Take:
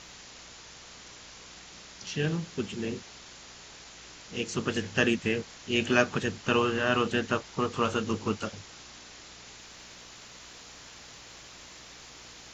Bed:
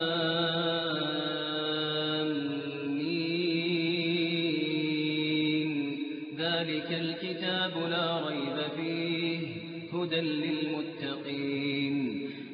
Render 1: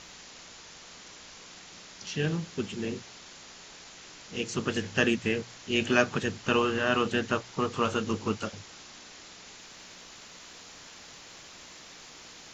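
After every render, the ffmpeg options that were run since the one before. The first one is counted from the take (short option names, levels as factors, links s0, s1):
-af "bandreject=f=60:t=h:w=4,bandreject=f=120:t=h:w=4"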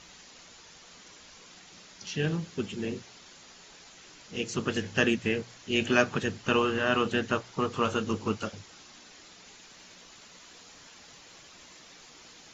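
-af "afftdn=nr=6:nf=-49"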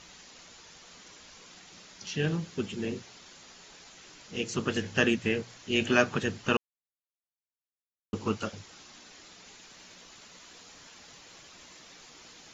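-filter_complex "[0:a]asplit=3[s0][s1][s2];[s0]atrim=end=6.57,asetpts=PTS-STARTPTS,afade=t=out:st=6.566:d=0.004:c=hsin[s3];[s1]atrim=start=6.57:end=8.13,asetpts=PTS-STARTPTS,volume=0[s4];[s2]atrim=start=8.13,asetpts=PTS-STARTPTS,afade=t=in:d=0.004:c=hsin[s5];[s3][s4][s5]concat=n=3:v=0:a=1"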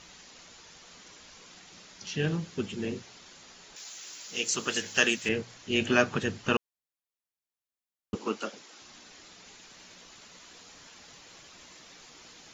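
-filter_complex "[0:a]asettb=1/sr,asplit=3[s0][s1][s2];[s0]atrim=end=3.764[s3];[s1]atrim=start=3.76:end=5.29,asetpts=PTS-STARTPTS,afade=t=in:d=0.004:c=qsin,afade=t=out:st=1.526:d=0.004:c=qsin,aemphasis=mode=production:type=riaa[s4];[s2]atrim=start=5.286[s5];[s3][s4]acrossfade=d=0.004:c1=hsin:c2=qsin[s6];[s6][s5]acrossfade=d=0.004:c1=qsin:c2=hsin,asettb=1/sr,asplit=3[s7][s8][s9];[s7]atrim=end=8.154[s10];[s8]atrim=start=8.15:end=8.82,asetpts=PTS-STARTPTS,afade=t=in:d=0.004:c=qsin,afade=t=out:st=0.666:d=0.004:c=qsin,highpass=f=240:w=0.5412,highpass=f=240:w=1.3066[s11];[s9]atrim=start=8.816[s12];[s10][s11]acrossfade=d=0.004:c1=hsin:c2=qsin[s13];[s13][s12]acrossfade=d=0.004:c1=qsin:c2=hsin"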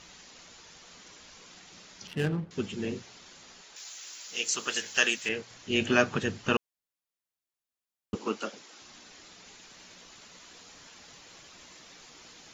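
-filter_complex "[0:a]asettb=1/sr,asplit=3[s0][s1][s2];[s0]atrim=end=2.074[s3];[s1]atrim=start=2.07:end=2.51,asetpts=PTS-STARTPTS,afade=t=in:d=0.004:c=qsin,afade=t=out:st=0.436:d=0.004:c=qsin,adynamicsmooth=sensitivity=6.5:basefreq=790[s4];[s2]atrim=start=2.506[s5];[s3][s4]acrossfade=d=0.004:c1=hsin:c2=qsin[s6];[s6][s5]acrossfade=d=0.004:c1=qsin:c2=hsin,asettb=1/sr,asplit=3[s7][s8][s9];[s7]atrim=end=3.614[s10];[s8]atrim=start=3.61:end=5.51,asetpts=PTS-STARTPTS,afade=t=in:d=0.004:c=qsin,afade=t=out:st=1.896:d=0.004:c=qsin,lowshelf=f=330:g=-11.5[s11];[s9]atrim=start=5.506[s12];[s10][s11]acrossfade=d=0.004:c1=hsin:c2=qsin[s13];[s13][s12]acrossfade=d=0.004:c1=qsin:c2=hsin"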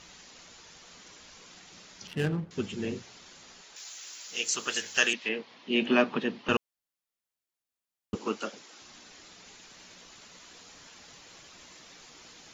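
-filter_complex "[0:a]asettb=1/sr,asplit=3[s0][s1][s2];[s0]atrim=end=5.134[s3];[s1]atrim=start=5.13:end=6.49,asetpts=PTS-STARTPTS,afade=t=in:d=0.004:c=qsin,afade=t=out:st=1.356:d=0.004:c=qsin,highpass=f=190:w=0.5412,highpass=f=190:w=1.3066,equalizer=f=240:t=q:w=4:g=4,equalizer=f=970:t=q:w=4:g=4,equalizer=f=1500:t=q:w=4:g=-6,lowpass=f=4200:w=0.5412,lowpass=f=4200:w=1.3066[s4];[s2]atrim=start=6.486[s5];[s3][s4]acrossfade=d=0.004:c1=hsin:c2=qsin[s6];[s6][s5]acrossfade=d=0.004:c1=qsin:c2=hsin"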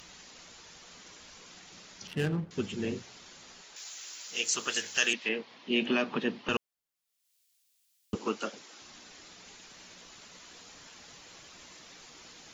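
-filter_complex "[0:a]acrossover=split=2600[s0][s1];[s0]alimiter=limit=0.106:level=0:latency=1:release=114[s2];[s1]acompressor=mode=upward:threshold=0.00178:ratio=2.5[s3];[s2][s3]amix=inputs=2:normalize=0"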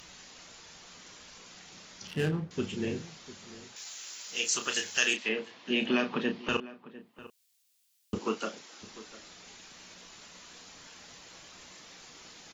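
-filter_complex "[0:a]asplit=2[s0][s1];[s1]adelay=32,volume=0.398[s2];[s0][s2]amix=inputs=2:normalize=0,asplit=2[s3][s4];[s4]adelay=699.7,volume=0.141,highshelf=f=4000:g=-15.7[s5];[s3][s5]amix=inputs=2:normalize=0"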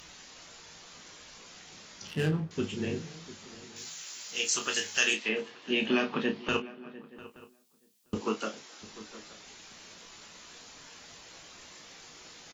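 -filter_complex "[0:a]asplit=2[s0][s1];[s1]adelay=19,volume=0.398[s2];[s0][s2]amix=inputs=2:normalize=0,asplit=2[s3][s4];[s4]adelay=874.6,volume=0.0891,highshelf=f=4000:g=-19.7[s5];[s3][s5]amix=inputs=2:normalize=0"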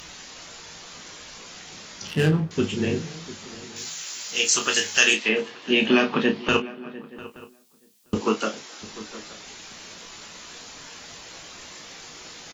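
-af "volume=2.66"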